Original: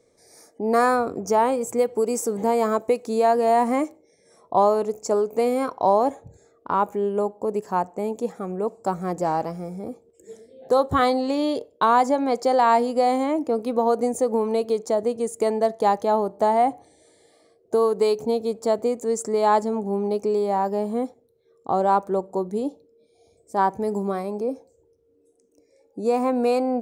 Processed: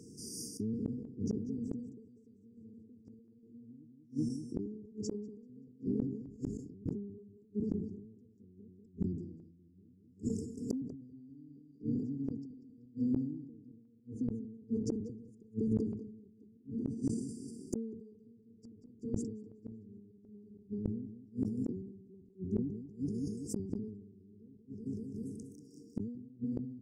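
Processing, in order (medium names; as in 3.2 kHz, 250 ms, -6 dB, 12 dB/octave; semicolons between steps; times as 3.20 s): octave divider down 1 oct, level -1 dB; ten-band graphic EQ 250 Hz +10 dB, 500 Hz -11 dB, 1 kHz +5 dB; compression 5:1, threshold -27 dBFS, peak gain reduction 14 dB; high-pass 66 Hz 12 dB/octave; feedback delay 191 ms, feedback 50%, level -4 dB; low-pass that closes with the level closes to 2.2 kHz, closed at -25 dBFS; random-step tremolo 3.5 Hz, depth 95%; brick-wall FIR band-stop 480–4600 Hz; inverted gate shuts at -33 dBFS, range -36 dB; decay stretcher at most 58 dB/s; trim +10.5 dB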